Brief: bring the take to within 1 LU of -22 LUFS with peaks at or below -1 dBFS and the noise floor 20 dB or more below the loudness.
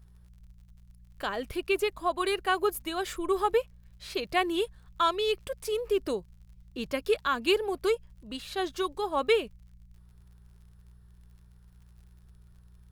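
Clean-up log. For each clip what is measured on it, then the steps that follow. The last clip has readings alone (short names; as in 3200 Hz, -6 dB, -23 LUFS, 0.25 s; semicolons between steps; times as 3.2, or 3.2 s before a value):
ticks 37/s; hum 60 Hz; harmonics up to 180 Hz; hum level -52 dBFS; loudness -29.5 LUFS; peak -13.0 dBFS; loudness target -22.0 LUFS
-> de-click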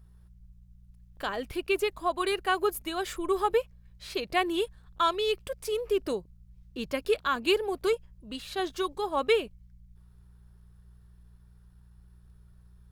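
ticks 0.70/s; hum 60 Hz; harmonics up to 180 Hz; hum level -53 dBFS
-> de-hum 60 Hz, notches 3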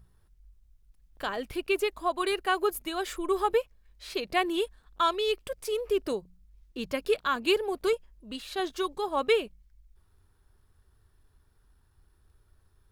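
hum none; loudness -29.5 LUFS; peak -13.0 dBFS; loudness target -22.0 LUFS
-> gain +7.5 dB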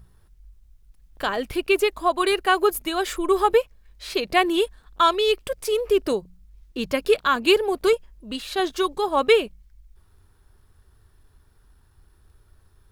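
loudness -22.0 LUFS; peak -5.5 dBFS; noise floor -58 dBFS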